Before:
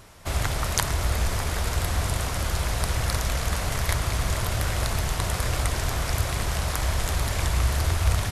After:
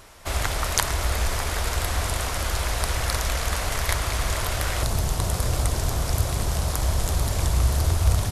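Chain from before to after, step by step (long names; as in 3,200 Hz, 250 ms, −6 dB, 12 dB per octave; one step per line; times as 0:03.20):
parametric band 140 Hz −8 dB 1.7 octaves, from 0:04.83 2,000 Hz
level +2.5 dB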